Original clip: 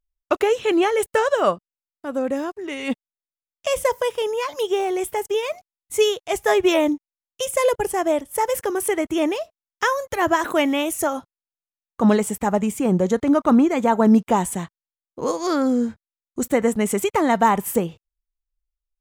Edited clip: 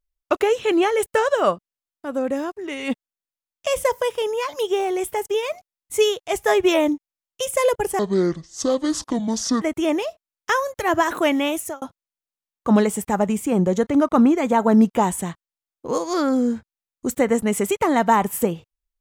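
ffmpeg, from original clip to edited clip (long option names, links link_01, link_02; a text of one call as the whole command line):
ffmpeg -i in.wav -filter_complex "[0:a]asplit=4[link_01][link_02][link_03][link_04];[link_01]atrim=end=7.994[link_05];[link_02]atrim=start=7.99:end=8.95,asetpts=PTS-STARTPTS,asetrate=26019,aresample=44100[link_06];[link_03]atrim=start=8.946:end=11.15,asetpts=PTS-STARTPTS,afade=type=out:start_time=1.924:duration=0.28[link_07];[link_04]atrim=start=11.15,asetpts=PTS-STARTPTS,afade=type=in:duration=0.004:curve=hsin[link_08];[link_05][link_06]acrossfade=duration=0.004:curve1=hsin:curve2=hsin[link_09];[link_07][link_08]concat=n=2:v=0:a=1[link_10];[link_09][link_10]acrossfade=duration=0.004:curve1=hsin:curve2=hsin" out.wav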